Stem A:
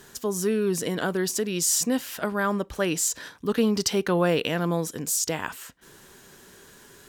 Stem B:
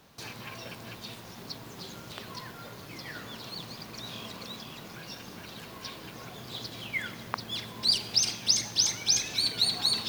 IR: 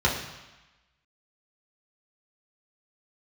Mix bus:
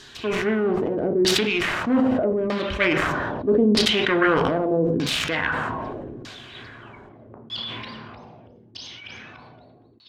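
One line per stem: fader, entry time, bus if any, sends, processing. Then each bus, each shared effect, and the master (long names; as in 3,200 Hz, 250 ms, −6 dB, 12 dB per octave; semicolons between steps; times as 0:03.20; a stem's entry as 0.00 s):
+2.5 dB, 0.00 s, send −20 dB, phase distortion by the signal itself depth 0.27 ms; parametric band 130 Hz −3 dB 1.9 octaves
−3.5 dB, 0.00 s, send −17.5 dB, low-pass filter 4,000 Hz 6 dB per octave; low-shelf EQ 140 Hz −8 dB; gate with flip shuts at −27 dBFS, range −24 dB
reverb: on, RT60 1.1 s, pre-delay 3 ms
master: high-shelf EQ 5,400 Hz +8.5 dB; auto-filter low-pass saw down 0.8 Hz 320–4,800 Hz; level that may fall only so fast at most 20 dB per second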